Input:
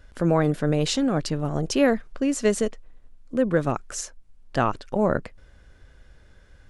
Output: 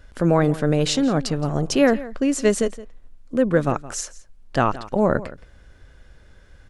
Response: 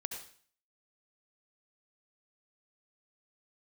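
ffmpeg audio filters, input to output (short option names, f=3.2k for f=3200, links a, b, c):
-filter_complex "[0:a]asplit=2[a][b];[b]adelay=169.1,volume=-17dB,highshelf=f=4k:g=-3.8[c];[a][c]amix=inputs=2:normalize=0,volume=3dB"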